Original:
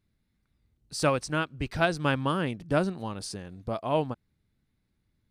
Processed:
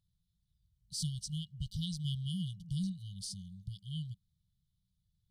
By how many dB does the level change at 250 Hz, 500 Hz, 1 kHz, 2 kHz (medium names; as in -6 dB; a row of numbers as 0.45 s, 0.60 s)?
-9.5 dB, under -40 dB, under -40 dB, under -40 dB